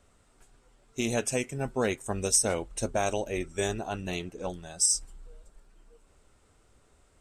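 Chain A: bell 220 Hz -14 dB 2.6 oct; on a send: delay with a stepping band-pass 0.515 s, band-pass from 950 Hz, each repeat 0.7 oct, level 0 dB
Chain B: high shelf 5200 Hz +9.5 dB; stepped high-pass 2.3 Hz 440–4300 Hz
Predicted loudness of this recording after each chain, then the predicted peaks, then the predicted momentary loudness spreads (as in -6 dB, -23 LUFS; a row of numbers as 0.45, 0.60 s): -31.5, -22.0 LUFS; -12.0, -1.5 dBFS; 22, 17 LU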